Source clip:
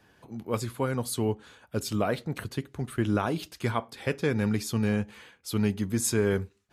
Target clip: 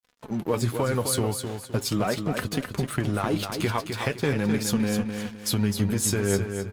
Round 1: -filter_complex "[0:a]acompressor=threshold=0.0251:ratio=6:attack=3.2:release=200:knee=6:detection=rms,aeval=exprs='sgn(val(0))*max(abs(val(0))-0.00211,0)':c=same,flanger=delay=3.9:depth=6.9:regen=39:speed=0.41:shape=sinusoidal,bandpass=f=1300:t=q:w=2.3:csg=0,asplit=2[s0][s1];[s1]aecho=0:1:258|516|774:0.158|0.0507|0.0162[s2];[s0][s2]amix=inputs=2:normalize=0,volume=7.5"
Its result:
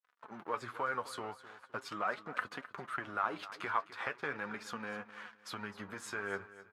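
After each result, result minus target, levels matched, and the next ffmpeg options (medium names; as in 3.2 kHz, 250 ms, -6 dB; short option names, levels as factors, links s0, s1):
1 kHz band +9.0 dB; echo-to-direct -9 dB
-filter_complex "[0:a]acompressor=threshold=0.0251:ratio=6:attack=3.2:release=200:knee=6:detection=rms,aeval=exprs='sgn(val(0))*max(abs(val(0))-0.00211,0)':c=same,flanger=delay=3.9:depth=6.9:regen=39:speed=0.41:shape=sinusoidal,asplit=2[s0][s1];[s1]aecho=0:1:258|516|774:0.158|0.0507|0.0162[s2];[s0][s2]amix=inputs=2:normalize=0,volume=7.5"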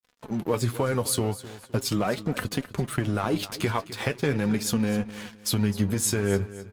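echo-to-direct -9 dB
-filter_complex "[0:a]acompressor=threshold=0.0251:ratio=6:attack=3.2:release=200:knee=6:detection=rms,aeval=exprs='sgn(val(0))*max(abs(val(0))-0.00211,0)':c=same,flanger=delay=3.9:depth=6.9:regen=39:speed=0.41:shape=sinusoidal,asplit=2[s0][s1];[s1]aecho=0:1:258|516|774|1032:0.447|0.143|0.0457|0.0146[s2];[s0][s2]amix=inputs=2:normalize=0,volume=7.5"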